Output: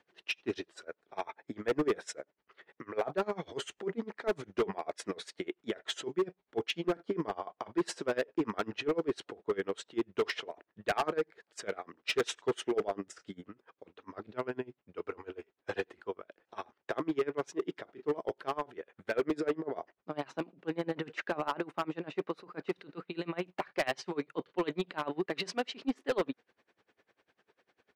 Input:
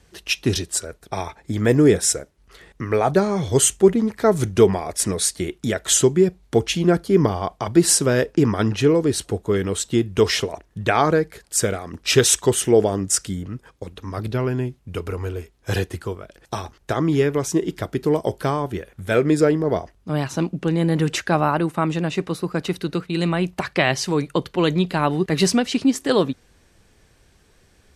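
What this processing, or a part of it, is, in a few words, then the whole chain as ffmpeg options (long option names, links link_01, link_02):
helicopter radio: -af "highpass=360,lowpass=2700,aeval=exprs='val(0)*pow(10,-26*(0.5-0.5*cos(2*PI*10*n/s))/20)':channel_layout=same,asoftclip=type=hard:threshold=-21dB,volume=-3dB"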